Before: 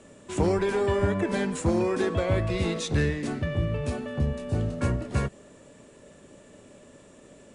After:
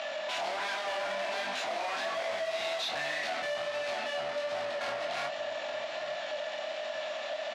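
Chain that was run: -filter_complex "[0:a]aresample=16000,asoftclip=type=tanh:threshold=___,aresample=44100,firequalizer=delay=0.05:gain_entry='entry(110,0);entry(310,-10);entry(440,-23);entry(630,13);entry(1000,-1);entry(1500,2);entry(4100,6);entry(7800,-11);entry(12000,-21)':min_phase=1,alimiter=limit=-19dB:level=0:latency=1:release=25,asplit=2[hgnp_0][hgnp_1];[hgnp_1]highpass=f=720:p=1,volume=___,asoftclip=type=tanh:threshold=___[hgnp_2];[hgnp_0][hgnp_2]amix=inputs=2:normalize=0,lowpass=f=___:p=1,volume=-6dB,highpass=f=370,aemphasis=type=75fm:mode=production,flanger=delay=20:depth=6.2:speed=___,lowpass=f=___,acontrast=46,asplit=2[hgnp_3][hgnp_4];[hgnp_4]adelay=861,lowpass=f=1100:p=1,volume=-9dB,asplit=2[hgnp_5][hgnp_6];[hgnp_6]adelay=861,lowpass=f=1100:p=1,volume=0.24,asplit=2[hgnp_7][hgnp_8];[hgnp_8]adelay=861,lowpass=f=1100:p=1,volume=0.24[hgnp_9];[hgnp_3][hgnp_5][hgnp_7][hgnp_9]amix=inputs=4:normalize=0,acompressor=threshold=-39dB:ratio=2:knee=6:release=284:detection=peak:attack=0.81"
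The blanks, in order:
-20.5dB, 33dB, -19dB, 3200, 1.3, 4200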